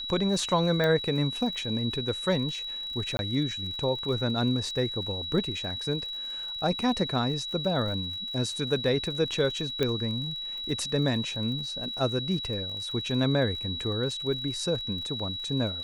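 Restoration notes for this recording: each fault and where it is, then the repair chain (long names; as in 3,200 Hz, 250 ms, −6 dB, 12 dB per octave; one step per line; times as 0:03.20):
surface crackle 48 per second −37 dBFS
whistle 3,900 Hz −33 dBFS
0:00.84: click −15 dBFS
0:03.17–0:03.19: drop-out 21 ms
0:09.83: click −14 dBFS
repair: click removal
notch filter 3,900 Hz, Q 30
repair the gap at 0:03.17, 21 ms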